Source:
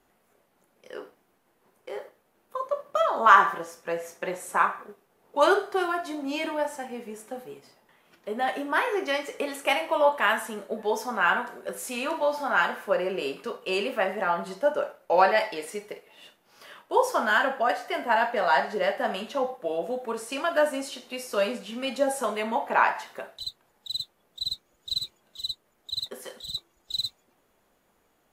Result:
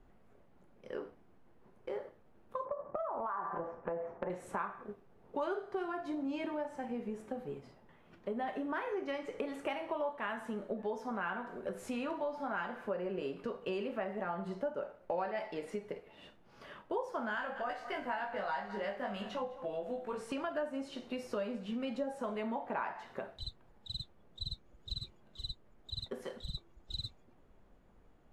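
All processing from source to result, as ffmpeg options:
-filter_complex "[0:a]asettb=1/sr,asplit=3[a][b][c];[a]atrim=end=2.654[d];[b]atrim=start=2.65:end=4.3,asetpts=PTS-STARTPTS,afade=t=in:d=0.004:c=qsin,afade=t=out:st=1.646:d=0.004:c=qsin,lowpass=1.4k,equalizer=f=880:w=0.81:g=10,acompressor=threshold=-27dB:ratio=4:attack=3.2:release=140:knee=1:detection=peak[e];[c]atrim=start=4.296[f];[d][e]acrossfade=d=0.004:c1=hsin:c2=qsin[g];[g][f]acrossfade=d=0.004:c1=qsin:c2=hsin,asettb=1/sr,asplit=3[h][i][j];[h]atrim=end=17.354[k];[i]atrim=start=17.35:end=20.32,asetpts=PTS-STARTPTS,afade=t=in:d=0.004:c=qsin,afade=t=out:st=2.966:d=0.004:c=qsin,equalizer=f=320:w=0.4:g=-8.5,asplit=2[l][m];[m]adelay=20,volume=-2dB[n];[l][n]amix=inputs=2:normalize=0,atrim=end_sample=130977,aecho=1:1:206:0.158,atrim=end_sample=130977[o];[j]atrim=start=20.316[p];[k][o]acrossfade=d=0.004:c1=hsin:c2=qsin[q];[q][p]acrossfade=d=0.004:c1=qsin:c2=hsin,aemphasis=mode=reproduction:type=riaa,acompressor=threshold=-33dB:ratio=4,volume=-3dB"

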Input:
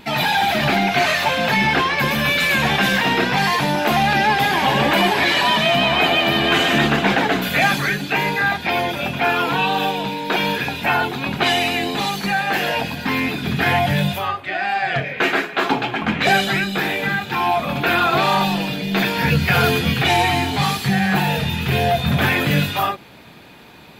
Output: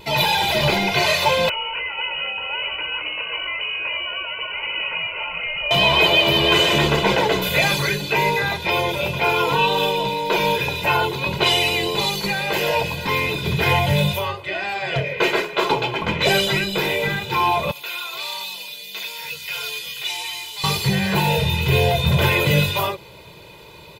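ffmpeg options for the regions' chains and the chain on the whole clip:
-filter_complex "[0:a]asettb=1/sr,asplit=3[a][b][c];[a]atrim=end=1.494[d];[b]atrim=start=1.49:end=5.71,asetpts=PTS-STARTPTS,afade=t=in:d=0.004:c=qsin,afade=t=out:st=4.216:d=0.004:c=qsin,acrossover=split=390|850[e][f][g];[e]acompressor=threshold=-32dB:ratio=4[h];[f]acompressor=threshold=-30dB:ratio=4[i];[g]acompressor=threshold=-31dB:ratio=4[j];[h][i][j]amix=inputs=3:normalize=0,lowpass=f=2.6k:t=q:w=0.5098,lowpass=f=2.6k:t=q:w=0.6013,lowpass=f=2.6k:t=q:w=0.9,lowpass=f=2.6k:t=q:w=2.563,afreqshift=-3100[k];[c]atrim=start=5.706[l];[d][k]acrossfade=d=0.004:c1=hsin:c2=qsin[m];[m][l]acrossfade=d=0.004:c1=qsin:c2=hsin,asettb=1/sr,asplit=3[n][o][p];[n]atrim=end=17.714[q];[o]atrim=start=17.71:end=20.64,asetpts=PTS-STARTPTS,afade=t=in:d=0.004:c=qsin,afade=t=out:st=2.926:d=0.004:c=qsin,acrossover=split=7000[r][s];[s]acompressor=threshold=-45dB:ratio=4:attack=1:release=60[t];[r][t]amix=inputs=2:normalize=0,aderivative[u];[p]atrim=start=20.636[v];[q][u]acrossfade=d=0.004:c1=hsin:c2=qsin[w];[w][v]acrossfade=d=0.004:c1=qsin:c2=hsin,equalizer=f=1.6k:w=2.6:g=-10.5,aecho=1:1:2:0.85"

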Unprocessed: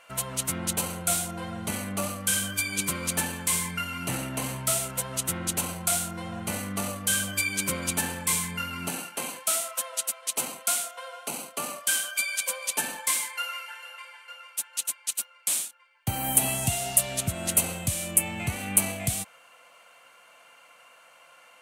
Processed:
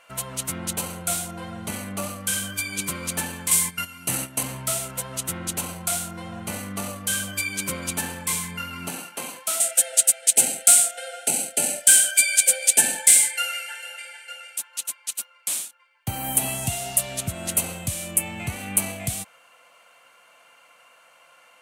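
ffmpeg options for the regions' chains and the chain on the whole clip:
-filter_complex "[0:a]asettb=1/sr,asplit=3[a][b][c];[a]atrim=end=3.514[d];[b]atrim=start=3.51:end=4.43,asetpts=PTS-STARTPTS,afade=t=in:d=0.004:c=qsin,afade=t=out:st=0.916:d=0.004:c=qsin,equalizer=f=11k:t=o:w=2.2:g=10,agate=range=-10dB:threshold=-31dB:ratio=16:release=100:detection=peak,highpass=50[e];[c]atrim=start=4.426[f];[d][e]acrossfade=d=0.004:c1=hsin:c2=qsin[g];[g][f]acrossfade=d=0.004:c1=qsin:c2=hsin,asettb=1/sr,asplit=3[h][i][j];[h]atrim=end=9.604[k];[i]atrim=start=9.6:end=14.58,asetpts=PTS-STARTPTS,afade=t=in:d=0.004:c=qsin,afade=t=out:st=4.976:d=0.004:c=qsin,equalizer=f=8.4k:t=o:w=0.57:g=10.5,acontrast=57,asuperstop=centerf=1100:order=12:qfactor=2.1[l];[j]atrim=start=14.576[m];[k][l]acrossfade=d=0.004:c1=hsin:c2=qsin[n];[n][m]acrossfade=d=0.004:c1=qsin:c2=hsin"

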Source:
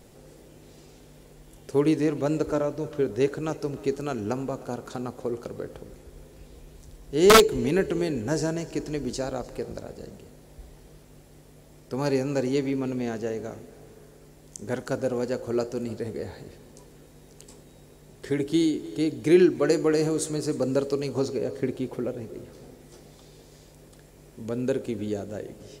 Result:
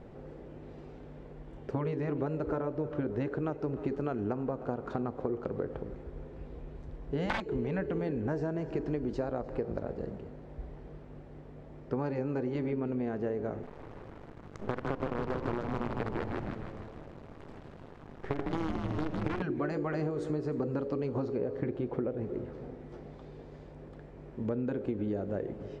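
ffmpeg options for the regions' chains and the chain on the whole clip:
-filter_complex "[0:a]asettb=1/sr,asplit=3[a][b][c];[a]atrim=end=13.634[d];[b]atrim=start=13.63:end=19.42,asetpts=PTS-STARTPTS,afade=t=in:d=0.004:c=qsin,afade=t=out:st=5.786:d=0.004:c=qsin,acompressor=threshold=-25dB:ratio=12:attack=3.2:release=140:knee=1:detection=peak,acrusher=bits=5:dc=4:mix=0:aa=0.000001,asplit=9[e][f][g][h][i][j][k][l][m];[f]adelay=154,afreqshift=-110,volume=-4.5dB[n];[g]adelay=308,afreqshift=-220,volume=-9.2dB[o];[h]adelay=462,afreqshift=-330,volume=-14dB[p];[i]adelay=616,afreqshift=-440,volume=-18.7dB[q];[j]adelay=770,afreqshift=-550,volume=-23.4dB[r];[k]adelay=924,afreqshift=-660,volume=-28.2dB[s];[l]adelay=1078,afreqshift=-770,volume=-32.9dB[t];[m]adelay=1232,afreqshift=-880,volume=-37.6dB[u];[e][n][o][p][q][r][s][t][u]amix=inputs=9:normalize=0,atrim=end_sample=255339[v];[c]atrim=start=19.416[w];[d][v]acrossfade=d=0.004:c1=hsin:c2=qsin[x];[x][w]acrossfade=d=0.004:c1=qsin:c2=hsin,lowpass=1.6k,afftfilt=real='re*lt(hypot(re,im),0.501)':imag='im*lt(hypot(re,im),0.501)':win_size=1024:overlap=0.75,acompressor=threshold=-32dB:ratio=12,volume=3.5dB"

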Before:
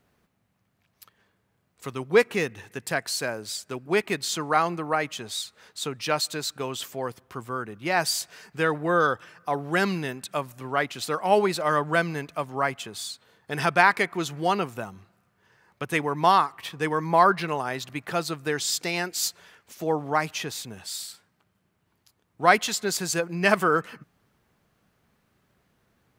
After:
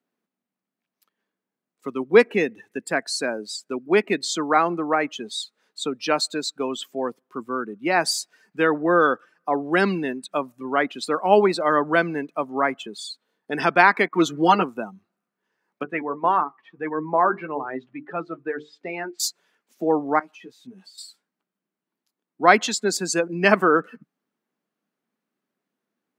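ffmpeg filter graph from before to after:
-filter_complex "[0:a]asettb=1/sr,asplit=3[a][b][c];[a]atrim=end=14.084[d];[b]atrim=start=14.08:end=14.63,asetpts=PTS-STARTPTS,afade=t=in:d=0.004:c=qsin,afade=t=out:st=0.546:d=0.004:c=qsin,agate=range=-33dB:threshold=-42dB:ratio=3:release=100:detection=peak,equalizer=f=1.2k:t=o:w=0.76:g=4,aecho=1:1:6.4:0.88,atrim=end_sample=24255[e];[c]atrim=start=14.626[f];[d][e]acrossfade=d=0.004:c1=hsin:c2=qsin[g];[g][f]acrossfade=d=0.004:c1=qsin:c2=hsin,asettb=1/sr,asplit=3[h][i][j];[h]atrim=end=15.834[k];[i]atrim=start=15.83:end=19.2,asetpts=PTS-STARTPTS,afade=t=in:d=0.004:c=qsin,afade=t=out:st=3.366:d=0.004:c=qsin,bandreject=f=50:t=h:w=6,bandreject=f=100:t=h:w=6,bandreject=f=150:t=h:w=6,bandreject=f=200:t=h:w=6,bandreject=f=250:t=h:w=6,bandreject=f=300:t=h:w=6,bandreject=f=350:t=h:w=6,bandreject=f=400:t=h:w=6,bandreject=f=450:t=h:w=6,flanger=delay=6.6:depth=2.3:regen=49:speed=1.7:shape=triangular,lowpass=2.3k[l];[j]atrim=start=19.196[m];[k][l]acrossfade=d=0.004:c1=hsin:c2=qsin[n];[n][m]acrossfade=d=0.004:c1=qsin:c2=hsin,asettb=1/sr,asplit=3[o][p][q];[o]atrim=end=20.194[r];[p]atrim=start=20.19:end=20.98,asetpts=PTS-STARTPTS,afade=t=in:d=0.004:c=qsin,afade=t=out:st=0.786:d=0.004:c=qsin,highshelf=f=7.6k:g=-6.5,acompressor=threshold=-41dB:ratio=6:attack=3.2:release=140:knee=1:detection=peak,asplit=2[s][t];[t]adelay=16,volume=-4dB[u];[s][u]amix=inputs=2:normalize=0,atrim=end_sample=34839[v];[q]atrim=start=20.976[w];[r][v]acrossfade=d=0.004:c1=hsin:c2=qsin[x];[x][w]acrossfade=d=0.004:c1=qsin:c2=hsin,afftdn=nr=18:nf=-35,highpass=f=200:w=0.5412,highpass=f=200:w=1.3066,equalizer=f=260:t=o:w=1.1:g=6,volume=3dB"

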